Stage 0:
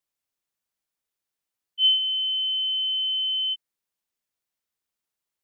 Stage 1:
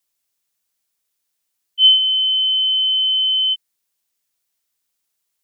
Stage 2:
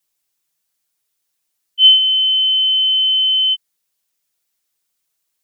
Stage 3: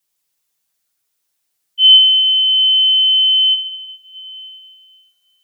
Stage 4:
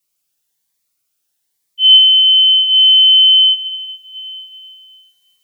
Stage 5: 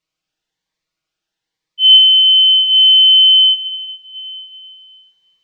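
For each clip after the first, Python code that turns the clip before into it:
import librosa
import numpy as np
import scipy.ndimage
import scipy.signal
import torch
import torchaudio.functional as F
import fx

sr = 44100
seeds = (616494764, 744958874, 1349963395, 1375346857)

y1 = fx.high_shelf(x, sr, hz=2900.0, db=9.5)
y1 = F.gain(torch.from_numpy(y1), 3.5).numpy()
y2 = y1 + 0.72 * np.pad(y1, (int(6.3 * sr / 1000.0), 0))[:len(y1)]
y3 = y2 + 10.0 ** (-5.5 / 20.0) * np.pad(y2, (int(102 * sr / 1000.0), 0))[:len(y2)]
y3 = fx.rev_plate(y3, sr, seeds[0], rt60_s=4.1, hf_ratio=0.6, predelay_ms=0, drr_db=5.0)
y4 = fx.rider(y3, sr, range_db=10, speed_s=0.5)
y4 = fx.notch_cascade(y4, sr, direction='rising', hz=1.1)
y4 = F.gain(torch.from_numpy(y4), 4.5).numpy()
y5 = fx.air_absorb(y4, sr, metres=180.0)
y5 = F.gain(torch.from_numpy(y5), 3.5).numpy()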